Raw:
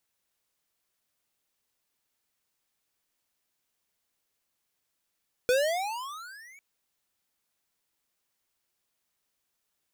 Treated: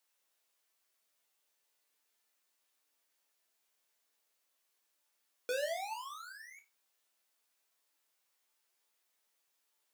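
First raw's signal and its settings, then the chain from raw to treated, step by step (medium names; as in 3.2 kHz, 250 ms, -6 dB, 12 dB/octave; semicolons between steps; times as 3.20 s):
gliding synth tone square, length 1.10 s, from 484 Hz, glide +27 st, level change -30.5 dB, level -22 dB
companding laws mixed up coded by mu; high-pass 370 Hz 12 dB/octave; chord resonator D2 sus4, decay 0.25 s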